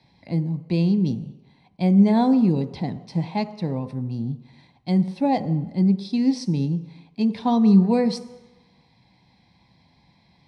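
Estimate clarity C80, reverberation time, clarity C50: 15.5 dB, 1.0 s, 14.0 dB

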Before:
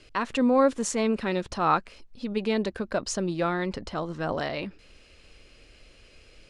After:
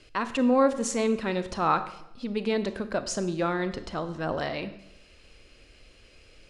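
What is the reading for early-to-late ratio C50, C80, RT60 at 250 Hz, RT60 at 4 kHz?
13.0 dB, 15.0 dB, 0.95 s, 0.70 s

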